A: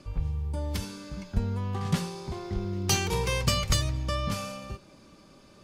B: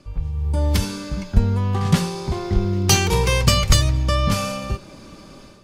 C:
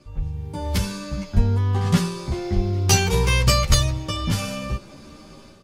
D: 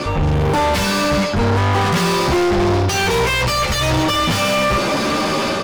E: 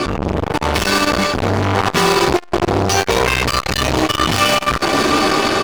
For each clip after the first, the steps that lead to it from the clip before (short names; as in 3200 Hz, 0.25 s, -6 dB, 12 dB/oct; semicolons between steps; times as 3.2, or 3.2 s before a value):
low shelf 63 Hz +5.5 dB; AGC gain up to 12 dB
endless flanger 11.3 ms +0.8 Hz; gain +1 dB
reverse; compressor 12:1, threshold -26 dBFS, peak gain reduction 16.5 dB; reverse; overdrive pedal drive 39 dB, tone 2200 Hz, clips at -16.5 dBFS; gain +8 dB
comb 2.7 ms, depth 46%; thinning echo 0.212 s, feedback 67%, high-pass 210 Hz, level -12 dB; core saturation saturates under 660 Hz; gain +5 dB